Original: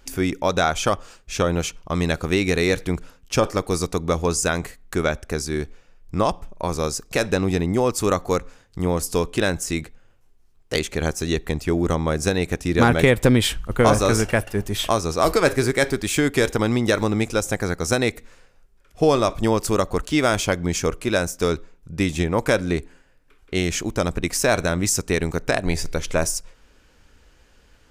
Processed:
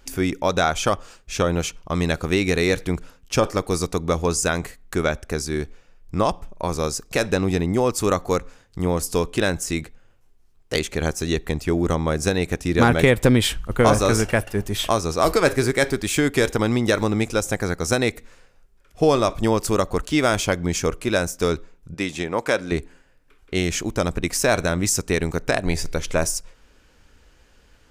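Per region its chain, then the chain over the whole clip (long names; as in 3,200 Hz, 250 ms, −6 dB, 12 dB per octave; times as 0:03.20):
0:21.94–0:22.72: high-pass filter 390 Hz 6 dB per octave + high-shelf EQ 11,000 Hz −10.5 dB
whole clip: no processing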